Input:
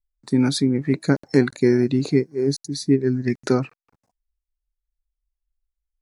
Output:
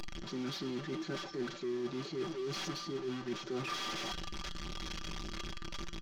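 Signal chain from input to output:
linear delta modulator 32 kbit/s, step −22 dBFS
low-shelf EQ 75 Hz −8 dB
comb filter 5.2 ms, depth 80%
reversed playback
downward compressor 12 to 1, threshold −25 dBFS, peak gain reduction 16.5 dB
reversed playback
tuned comb filter 170 Hz, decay 0.85 s, harmonics all, mix 60%
hollow resonant body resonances 320/1,200/3,300 Hz, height 14 dB, ringing for 85 ms
in parallel at −9.5 dB: wave folding −36 dBFS
on the sum: level −5.5 dB

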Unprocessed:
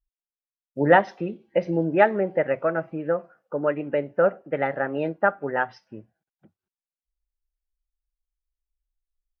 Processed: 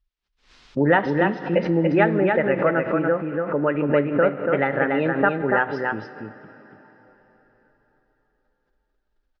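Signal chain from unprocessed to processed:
low-pass filter 4,800 Hz 24 dB per octave
parametric band 640 Hz −6 dB 0.78 octaves
downward compressor 2 to 1, threshold −27 dBFS, peak gain reduction 8 dB
single-tap delay 286 ms −4 dB
dense smooth reverb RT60 4.1 s, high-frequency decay 0.9×, DRR 14.5 dB
background raised ahead of every attack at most 120 dB per second
level +8 dB

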